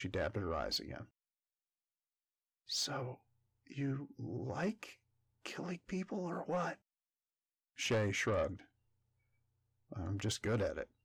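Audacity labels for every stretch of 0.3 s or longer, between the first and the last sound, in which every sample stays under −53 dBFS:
1.050000	2.690000	silence
3.150000	3.670000	silence
4.930000	5.460000	silence
6.750000	7.780000	silence
8.640000	9.910000	silence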